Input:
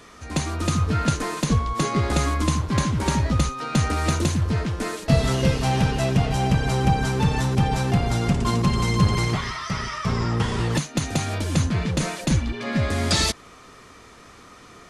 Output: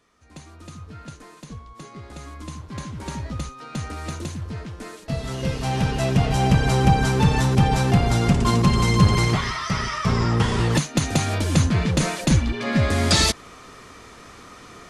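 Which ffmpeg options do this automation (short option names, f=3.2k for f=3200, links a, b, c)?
-af "volume=3dB,afade=t=in:st=2.14:d=1.05:silence=0.375837,afade=t=in:st=5.23:d=1.3:silence=0.251189"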